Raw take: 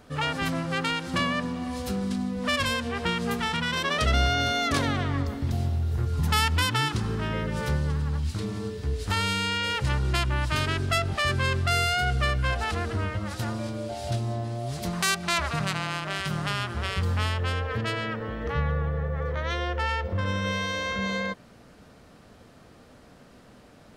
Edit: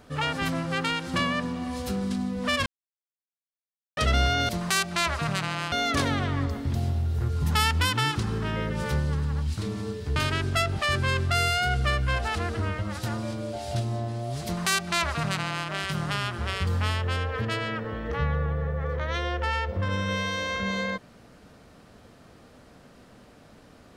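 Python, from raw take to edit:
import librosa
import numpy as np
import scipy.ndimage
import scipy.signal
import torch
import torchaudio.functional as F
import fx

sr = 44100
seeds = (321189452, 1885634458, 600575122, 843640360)

y = fx.edit(x, sr, fx.silence(start_s=2.66, length_s=1.31),
    fx.cut(start_s=8.93, length_s=1.59),
    fx.duplicate(start_s=14.81, length_s=1.23, to_s=4.49), tone=tone)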